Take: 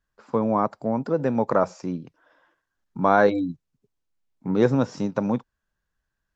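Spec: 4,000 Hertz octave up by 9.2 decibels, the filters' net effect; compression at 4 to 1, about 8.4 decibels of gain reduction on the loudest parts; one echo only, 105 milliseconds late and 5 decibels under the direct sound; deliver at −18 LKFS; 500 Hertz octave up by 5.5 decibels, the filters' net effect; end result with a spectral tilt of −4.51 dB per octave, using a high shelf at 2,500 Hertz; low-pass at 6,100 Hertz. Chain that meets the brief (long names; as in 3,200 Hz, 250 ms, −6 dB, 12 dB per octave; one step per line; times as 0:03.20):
low-pass filter 6,100 Hz
parametric band 500 Hz +6 dB
high-shelf EQ 2,500 Hz +4.5 dB
parametric band 4,000 Hz +7.5 dB
downward compressor 4 to 1, threshold −18 dBFS
single-tap delay 105 ms −5 dB
level +6 dB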